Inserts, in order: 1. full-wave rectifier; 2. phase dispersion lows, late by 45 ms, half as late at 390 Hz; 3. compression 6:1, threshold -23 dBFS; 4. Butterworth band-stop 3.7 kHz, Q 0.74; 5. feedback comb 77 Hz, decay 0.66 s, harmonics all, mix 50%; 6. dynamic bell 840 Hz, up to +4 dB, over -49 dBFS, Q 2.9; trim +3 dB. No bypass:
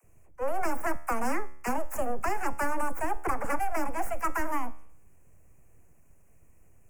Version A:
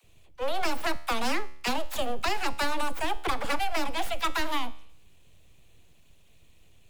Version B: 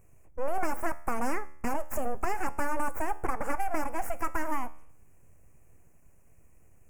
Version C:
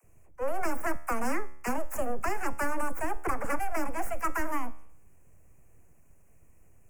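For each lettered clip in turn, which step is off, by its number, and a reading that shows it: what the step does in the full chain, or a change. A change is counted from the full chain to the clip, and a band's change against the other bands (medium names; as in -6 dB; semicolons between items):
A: 4, 4 kHz band +20.0 dB; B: 2, crest factor change +3.0 dB; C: 6, loudness change -1.0 LU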